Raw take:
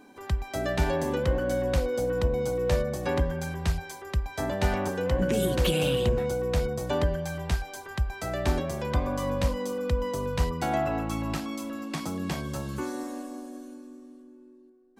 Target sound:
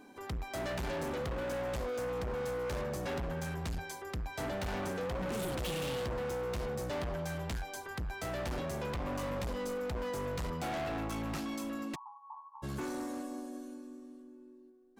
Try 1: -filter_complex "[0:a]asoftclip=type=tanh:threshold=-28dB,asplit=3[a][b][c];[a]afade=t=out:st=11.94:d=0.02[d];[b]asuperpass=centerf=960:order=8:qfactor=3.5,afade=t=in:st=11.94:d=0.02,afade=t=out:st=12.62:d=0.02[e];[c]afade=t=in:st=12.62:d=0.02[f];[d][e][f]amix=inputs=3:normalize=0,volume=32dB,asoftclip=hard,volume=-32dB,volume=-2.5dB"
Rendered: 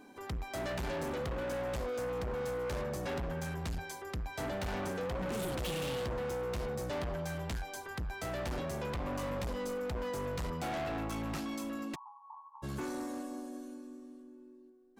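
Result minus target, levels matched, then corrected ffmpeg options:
soft clip: distortion +11 dB
-filter_complex "[0:a]asoftclip=type=tanh:threshold=-17.5dB,asplit=3[a][b][c];[a]afade=t=out:st=11.94:d=0.02[d];[b]asuperpass=centerf=960:order=8:qfactor=3.5,afade=t=in:st=11.94:d=0.02,afade=t=out:st=12.62:d=0.02[e];[c]afade=t=in:st=12.62:d=0.02[f];[d][e][f]amix=inputs=3:normalize=0,volume=32dB,asoftclip=hard,volume=-32dB,volume=-2.5dB"

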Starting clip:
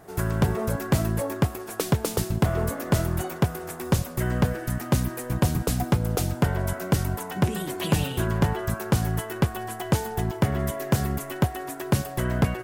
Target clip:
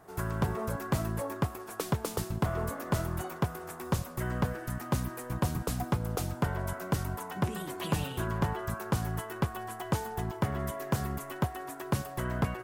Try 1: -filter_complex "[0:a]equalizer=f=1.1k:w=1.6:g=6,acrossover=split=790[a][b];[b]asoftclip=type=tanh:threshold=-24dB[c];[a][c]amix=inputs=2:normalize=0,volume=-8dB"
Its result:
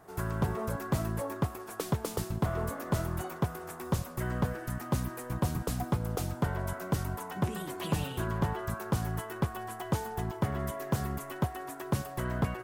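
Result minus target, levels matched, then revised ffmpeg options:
soft clip: distortion +13 dB
-filter_complex "[0:a]equalizer=f=1.1k:w=1.6:g=6,acrossover=split=790[a][b];[b]asoftclip=type=tanh:threshold=-13dB[c];[a][c]amix=inputs=2:normalize=0,volume=-8dB"

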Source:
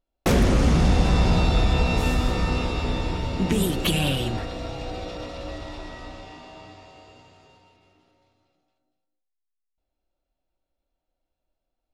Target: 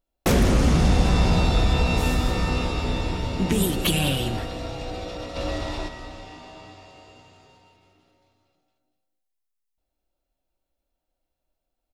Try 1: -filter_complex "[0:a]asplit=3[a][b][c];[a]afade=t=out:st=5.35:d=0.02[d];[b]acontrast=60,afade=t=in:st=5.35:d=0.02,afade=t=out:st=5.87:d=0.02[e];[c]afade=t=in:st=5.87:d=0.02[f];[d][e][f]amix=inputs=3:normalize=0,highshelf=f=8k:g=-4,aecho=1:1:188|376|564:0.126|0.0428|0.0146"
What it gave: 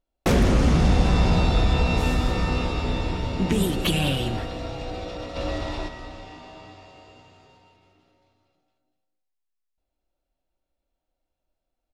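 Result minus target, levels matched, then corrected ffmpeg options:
8000 Hz band -4.5 dB
-filter_complex "[0:a]asplit=3[a][b][c];[a]afade=t=out:st=5.35:d=0.02[d];[b]acontrast=60,afade=t=in:st=5.35:d=0.02,afade=t=out:st=5.87:d=0.02[e];[c]afade=t=in:st=5.87:d=0.02[f];[d][e][f]amix=inputs=3:normalize=0,highshelf=f=8k:g=6,aecho=1:1:188|376|564:0.126|0.0428|0.0146"

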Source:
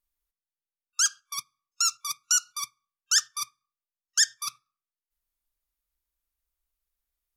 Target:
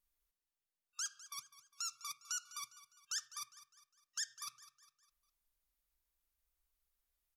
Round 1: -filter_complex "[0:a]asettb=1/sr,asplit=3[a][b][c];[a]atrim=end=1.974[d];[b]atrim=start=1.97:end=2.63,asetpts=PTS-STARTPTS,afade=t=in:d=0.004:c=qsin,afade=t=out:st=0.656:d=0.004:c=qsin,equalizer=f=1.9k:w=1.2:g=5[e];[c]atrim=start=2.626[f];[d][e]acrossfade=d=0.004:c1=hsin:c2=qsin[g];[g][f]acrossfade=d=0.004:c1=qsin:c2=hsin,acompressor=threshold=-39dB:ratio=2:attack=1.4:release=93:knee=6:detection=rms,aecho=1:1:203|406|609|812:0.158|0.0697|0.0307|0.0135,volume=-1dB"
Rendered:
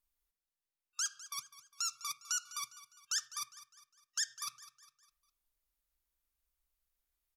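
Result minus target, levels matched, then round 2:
compressor: peak gain reduction -5 dB
-filter_complex "[0:a]asettb=1/sr,asplit=3[a][b][c];[a]atrim=end=1.974[d];[b]atrim=start=1.97:end=2.63,asetpts=PTS-STARTPTS,afade=t=in:d=0.004:c=qsin,afade=t=out:st=0.656:d=0.004:c=qsin,equalizer=f=1.9k:w=1.2:g=5[e];[c]atrim=start=2.626[f];[d][e]acrossfade=d=0.004:c1=hsin:c2=qsin[g];[g][f]acrossfade=d=0.004:c1=qsin:c2=hsin,acompressor=threshold=-49.5dB:ratio=2:attack=1.4:release=93:knee=6:detection=rms,aecho=1:1:203|406|609|812:0.158|0.0697|0.0307|0.0135,volume=-1dB"

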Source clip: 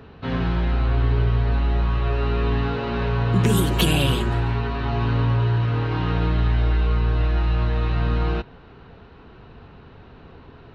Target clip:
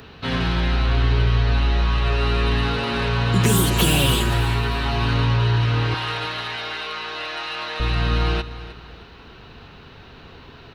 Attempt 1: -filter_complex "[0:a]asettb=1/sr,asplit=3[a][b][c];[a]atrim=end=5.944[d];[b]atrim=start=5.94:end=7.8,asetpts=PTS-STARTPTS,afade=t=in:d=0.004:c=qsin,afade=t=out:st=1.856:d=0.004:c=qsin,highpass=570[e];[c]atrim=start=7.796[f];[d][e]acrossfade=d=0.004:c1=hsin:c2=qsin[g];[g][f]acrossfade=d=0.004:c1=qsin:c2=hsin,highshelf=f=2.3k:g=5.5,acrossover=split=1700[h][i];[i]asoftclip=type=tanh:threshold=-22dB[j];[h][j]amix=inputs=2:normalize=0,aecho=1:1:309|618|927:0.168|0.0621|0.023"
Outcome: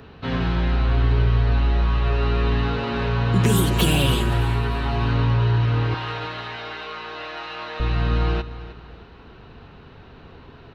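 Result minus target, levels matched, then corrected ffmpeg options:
4000 Hz band -4.0 dB
-filter_complex "[0:a]asettb=1/sr,asplit=3[a][b][c];[a]atrim=end=5.944[d];[b]atrim=start=5.94:end=7.8,asetpts=PTS-STARTPTS,afade=t=in:d=0.004:c=qsin,afade=t=out:st=1.856:d=0.004:c=qsin,highpass=570[e];[c]atrim=start=7.796[f];[d][e]acrossfade=d=0.004:c1=hsin:c2=qsin[g];[g][f]acrossfade=d=0.004:c1=qsin:c2=hsin,highshelf=f=2.3k:g=17,acrossover=split=1700[h][i];[i]asoftclip=type=tanh:threshold=-22dB[j];[h][j]amix=inputs=2:normalize=0,aecho=1:1:309|618|927:0.168|0.0621|0.023"

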